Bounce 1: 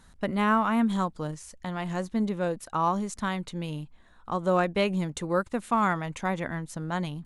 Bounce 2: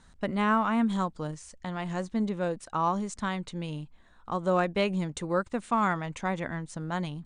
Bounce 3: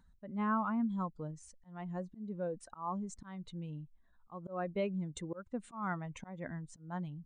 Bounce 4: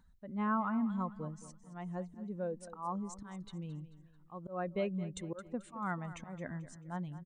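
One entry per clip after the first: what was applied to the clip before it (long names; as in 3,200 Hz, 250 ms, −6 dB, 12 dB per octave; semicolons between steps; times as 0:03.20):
Butterworth low-pass 9,600 Hz 96 dB per octave; level −1.5 dB
expanding power law on the bin magnitudes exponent 1.6; tape wow and flutter 20 cents; volume swells 206 ms; level −7.5 dB
repeating echo 219 ms, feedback 41%, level −15 dB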